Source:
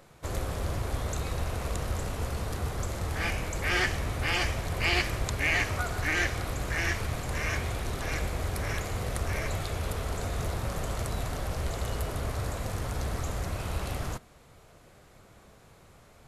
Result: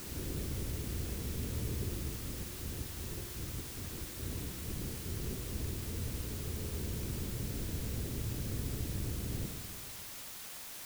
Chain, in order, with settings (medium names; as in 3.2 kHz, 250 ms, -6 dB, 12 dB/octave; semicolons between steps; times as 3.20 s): bass shelf 82 Hz -7 dB; pre-echo 267 ms -12 dB; bit crusher 7-bit; bass shelf 270 Hz -4 dB; compressor with a negative ratio -40 dBFS, ratio -1; de-hum 45.73 Hz, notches 34; tempo 1.5×; inverse Chebyshev low-pass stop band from 2.1 kHz, stop band 80 dB; Schroeder reverb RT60 2.2 s, combs from 33 ms, DRR 5 dB; added noise white -51 dBFS; trim +4.5 dB